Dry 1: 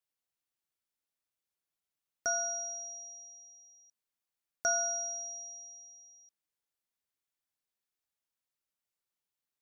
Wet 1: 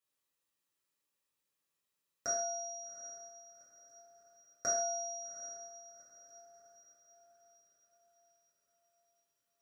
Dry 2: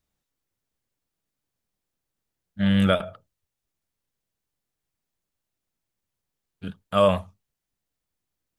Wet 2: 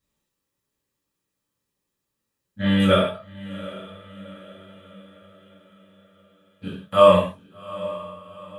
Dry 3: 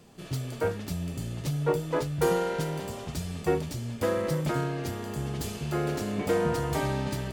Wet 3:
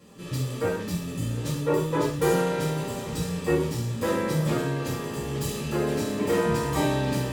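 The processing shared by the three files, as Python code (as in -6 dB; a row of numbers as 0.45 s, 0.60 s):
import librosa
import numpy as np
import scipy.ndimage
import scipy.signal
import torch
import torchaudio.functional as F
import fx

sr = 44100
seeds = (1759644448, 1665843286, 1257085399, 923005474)

y = fx.notch_comb(x, sr, f0_hz=720.0)
y = fx.echo_diffused(y, sr, ms=777, feedback_pct=49, wet_db=-16.0)
y = fx.rev_gated(y, sr, seeds[0], gate_ms=190, shape='falling', drr_db=-6.5)
y = y * 10.0 ** (-1.5 / 20.0)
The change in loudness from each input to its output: -4.0 LU, +3.0 LU, +3.0 LU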